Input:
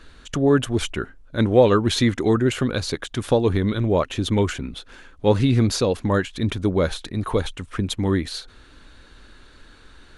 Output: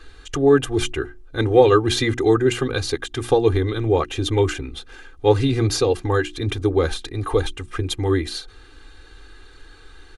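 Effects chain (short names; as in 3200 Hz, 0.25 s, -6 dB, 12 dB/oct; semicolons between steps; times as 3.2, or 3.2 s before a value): notches 60/120/180/240/300/360 Hz; comb 2.5 ms, depth 95%; gain -1 dB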